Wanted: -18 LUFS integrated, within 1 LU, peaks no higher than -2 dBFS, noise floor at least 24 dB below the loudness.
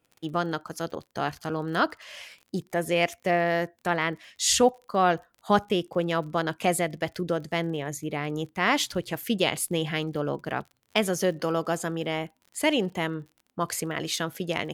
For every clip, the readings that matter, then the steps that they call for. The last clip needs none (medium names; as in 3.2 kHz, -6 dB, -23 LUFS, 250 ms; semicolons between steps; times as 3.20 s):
tick rate 44 per s; loudness -27.5 LUFS; peak level -7.5 dBFS; loudness target -18.0 LUFS
-> de-click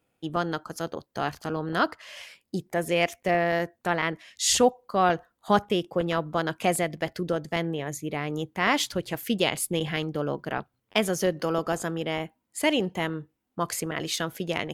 tick rate 0.54 per s; loudness -27.5 LUFS; peak level -7.5 dBFS; loudness target -18.0 LUFS
-> trim +9.5 dB; peak limiter -2 dBFS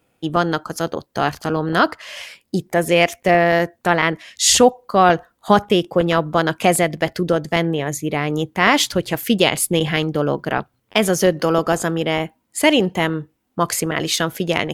loudness -18.5 LUFS; peak level -2.0 dBFS; noise floor -69 dBFS